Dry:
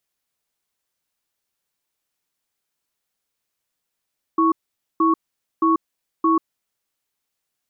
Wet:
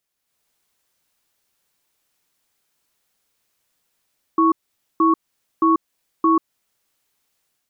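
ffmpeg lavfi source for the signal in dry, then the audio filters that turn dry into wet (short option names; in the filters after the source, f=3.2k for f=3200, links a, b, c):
-f lavfi -i "aevalsrc='0.15*(sin(2*PI*326*t)+sin(2*PI*1110*t))*clip(min(mod(t,0.62),0.14-mod(t,0.62))/0.005,0,1)':d=2.28:s=44100"
-af "dynaudnorm=f=120:g=5:m=8.5dB,alimiter=limit=-9dB:level=0:latency=1:release=212"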